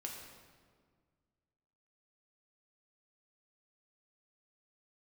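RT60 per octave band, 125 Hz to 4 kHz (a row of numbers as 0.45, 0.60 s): 2.4, 2.2, 1.9, 1.7, 1.4, 1.2 s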